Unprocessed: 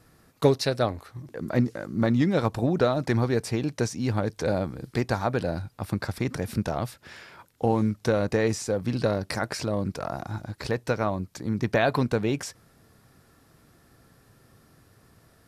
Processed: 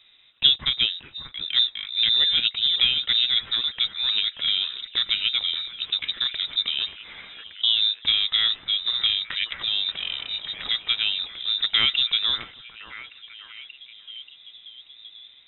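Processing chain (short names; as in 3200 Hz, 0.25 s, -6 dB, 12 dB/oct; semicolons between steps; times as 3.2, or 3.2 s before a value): 9.61–11.13 switching spikes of -26.5 dBFS; delay with a stepping band-pass 0.583 s, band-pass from 3000 Hz, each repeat -0.7 oct, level -8 dB; inverted band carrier 3800 Hz; gain +1.5 dB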